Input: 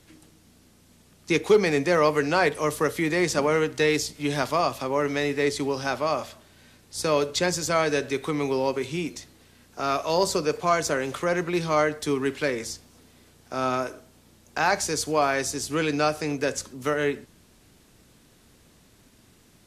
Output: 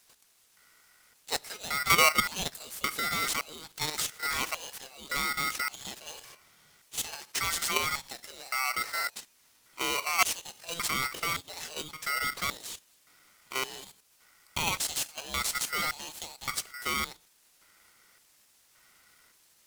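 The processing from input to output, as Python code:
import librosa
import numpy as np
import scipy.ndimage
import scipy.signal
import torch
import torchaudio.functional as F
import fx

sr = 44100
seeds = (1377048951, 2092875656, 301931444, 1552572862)

y = fx.high_shelf(x, sr, hz=11000.0, db=8.5)
y = fx.level_steps(y, sr, step_db=10)
y = fx.filter_lfo_highpass(y, sr, shape='square', hz=0.88, low_hz=230.0, high_hz=2700.0, q=0.85)
y = y * np.sign(np.sin(2.0 * np.pi * 1700.0 * np.arange(len(y)) / sr))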